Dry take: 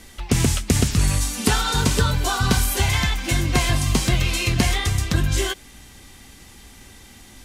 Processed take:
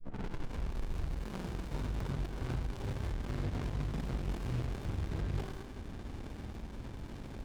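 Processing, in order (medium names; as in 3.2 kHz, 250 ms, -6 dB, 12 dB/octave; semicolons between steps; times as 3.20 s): tape start-up on the opening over 1.71 s; steep low-pass 4.6 kHz; in parallel at -2 dB: upward compressor, threshold -22 dBFS; on the sum: peak limiter -14 dBFS, peak gain reduction 13 dB; saturation -26 dBFS, distortion -9 dB; granulator, spray 32 ms; reverberation RT60 1.0 s, pre-delay 44 ms, DRR 4.5 dB; sliding maximum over 65 samples; trim -5.5 dB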